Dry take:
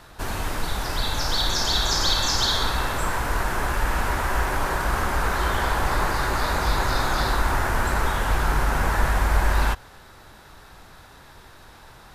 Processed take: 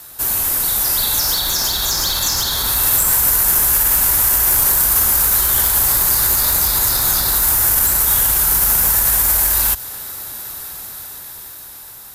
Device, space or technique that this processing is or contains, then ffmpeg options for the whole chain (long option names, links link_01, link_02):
FM broadcast chain: -filter_complex "[0:a]highpass=frequency=61:poles=1,dynaudnorm=framelen=390:gausssize=9:maxgain=11.5dB,acrossover=split=180|3000[link_01][link_02][link_03];[link_01]acompressor=threshold=-20dB:ratio=4[link_04];[link_02]acompressor=threshold=-24dB:ratio=4[link_05];[link_03]acompressor=threshold=-29dB:ratio=4[link_06];[link_04][link_05][link_06]amix=inputs=3:normalize=0,aemphasis=mode=production:type=50fm,alimiter=limit=-12.5dB:level=0:latency=1:release=46,asoftclip=type=hard:threshold=-16dB,lowpass=frequency=15000:width=0.5412,lowpass=frequency=15000:width=1.3066,aemphasis=mode=production:type=50fm,volume=-1dB"